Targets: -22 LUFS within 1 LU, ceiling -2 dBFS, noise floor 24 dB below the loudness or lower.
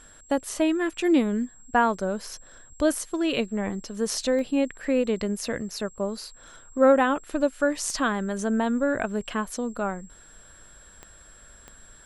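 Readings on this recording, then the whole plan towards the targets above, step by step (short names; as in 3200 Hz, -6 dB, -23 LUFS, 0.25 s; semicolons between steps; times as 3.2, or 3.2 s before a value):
clicks 4; steady tone 7600 Hz; tone level -51 dBFS; loudness -26.0 LUFS; peak -8.0 dBFS; loudness target -22.0 LUFS
-> de-click; notch 7600 Hz, Q 30; gain +4 dB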